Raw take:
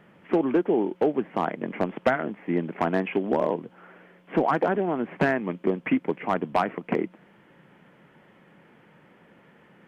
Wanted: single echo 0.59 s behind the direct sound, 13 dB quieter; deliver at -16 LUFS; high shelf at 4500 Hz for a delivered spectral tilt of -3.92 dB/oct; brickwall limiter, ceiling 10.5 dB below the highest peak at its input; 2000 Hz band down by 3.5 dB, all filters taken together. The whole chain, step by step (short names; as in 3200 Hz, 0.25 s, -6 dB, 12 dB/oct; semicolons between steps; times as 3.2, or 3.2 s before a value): bell 2000 Hz -3.5 dB; high shelf 4500 Hz -6.5 dB; limiter -21 dBFS; echo 0.59 s -13 dB; gain +16 dB